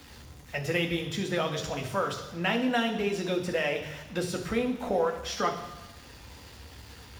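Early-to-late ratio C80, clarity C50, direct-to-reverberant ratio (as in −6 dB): 11.5 dB, 9.0 dB, 3.0 dB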